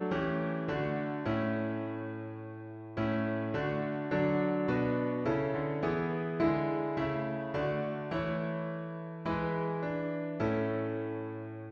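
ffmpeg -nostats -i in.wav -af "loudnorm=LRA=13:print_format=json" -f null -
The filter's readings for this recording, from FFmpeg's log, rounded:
"input_i" : "-34.0",
"input_tp" : "-16.5",
"input_lra" : "3.4",
"input_thresh" : "-44.0",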